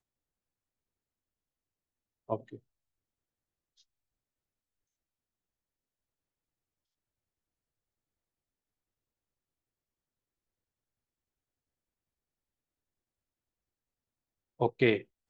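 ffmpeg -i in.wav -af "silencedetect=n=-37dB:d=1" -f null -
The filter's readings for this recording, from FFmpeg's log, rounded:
silence_start: 0.00
silence_end: 2.30 | silence_duration: 2.30
silence_start: 2.55
silence_end: 14.61 | silence_duration: 12.06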